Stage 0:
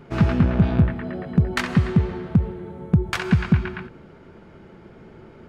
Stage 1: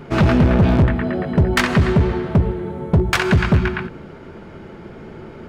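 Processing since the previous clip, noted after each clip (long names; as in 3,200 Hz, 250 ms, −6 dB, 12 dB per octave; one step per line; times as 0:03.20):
mains-hum notches 60/120/180 Hz
hard clipping −18.5 dBFS, distortion −7 dB
level +9 dB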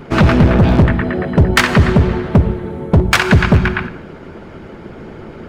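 four-comb reverb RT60 0.78 s, DRR 11.5 dB
harmonic and percussive parts rebalanced percussive +7 dB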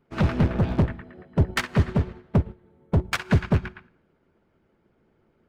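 expander for the loud parts 2.5 to 1, over −22 dBFS
level −8 dB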